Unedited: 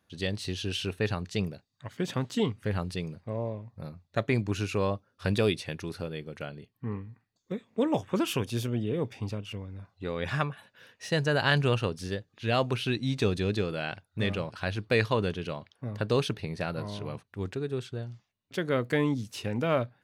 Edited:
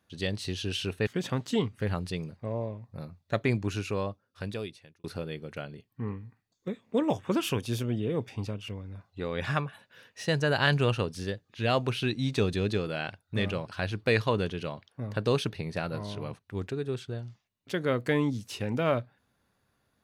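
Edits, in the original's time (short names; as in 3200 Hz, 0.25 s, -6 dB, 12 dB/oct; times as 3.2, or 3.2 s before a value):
1.07–1.91 cut
4.36–5.88 fade out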